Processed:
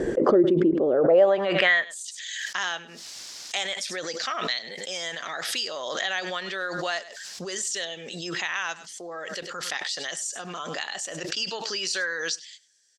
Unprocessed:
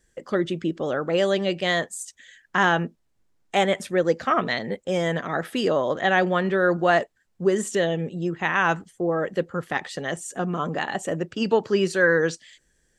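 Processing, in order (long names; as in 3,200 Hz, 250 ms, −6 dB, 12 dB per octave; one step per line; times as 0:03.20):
single-tap delay 100 ms −20.5 dB
band-pass filter sweep 380 Hz → 5,100 Hz, 0:00.90–0:02.24
in parallel at +2.5 dB: downward compressor, threshold −40 dBFS, peak gain reduction 17.5 dB
on the sum: parametric band 640 Hz +3 dB 0.52 octaves
background raised ahead of every attack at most 28 dB per second
level +4.5 dB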